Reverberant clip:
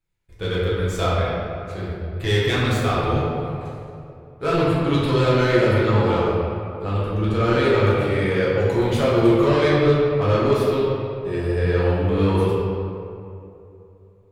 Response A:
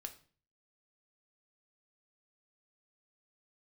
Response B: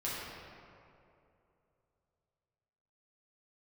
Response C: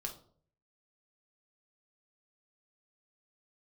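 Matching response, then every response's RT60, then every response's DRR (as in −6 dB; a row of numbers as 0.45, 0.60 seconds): B; 0.40, 2.8, 0.55 seconds; 5.5, −8.5, 1.5 decibels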